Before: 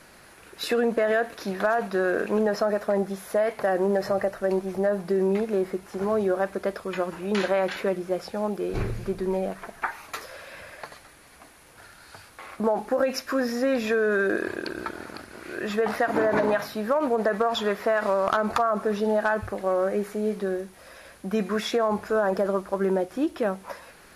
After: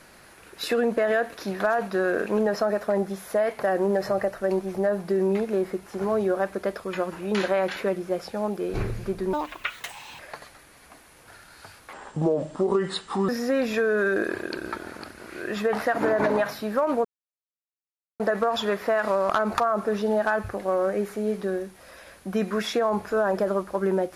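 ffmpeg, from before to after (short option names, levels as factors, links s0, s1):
-filter_complex "[0:a]asplit=6[s0][s1][s2][s3][s4][s5];[s0]atrim=end=9.334[s6];[s1]atrim=start=9.33:end=10.69,asetpts=PTS-STARTPTS,asetrate=69678,aresample=44100,atrim=end_sample=37959,asetpts=PTS-STARTPTS[s7];[s2]atrim=start=10.686:end=12.434[s8];[s3]atrim=start=12.43:end=13.42,asetpts=PTS-STARTPTS,asetrate=32193,aresample=44100[s9];[s4]atrim=start=13.416:end=17.18,asetpts=PTS-STARTPTS,afade=t=out:st=3.76:d=0.004:c=hsin,apad=pad_dur=1.15[s10];[s5]atrim=start=17.18,asetpts=PTS-STARTPTS,afade=t=in:d=0.004:c=hsin[s11];[s6][s7]acrossfade=d=0.004:c1=hsin:c2=hsin[s12];[s12][s8]acrossfade=d=0.004:c1=hsin:c2=hsin[s13];[s13][s9]acrossfade=d=0.004:c1=hsin:c2=hsin[s14];[s10][s11]concat=n=2:v=0:a=1[s15];[s14][s15]acrossfade=d=0.004:c1=hsin:c2=hsin"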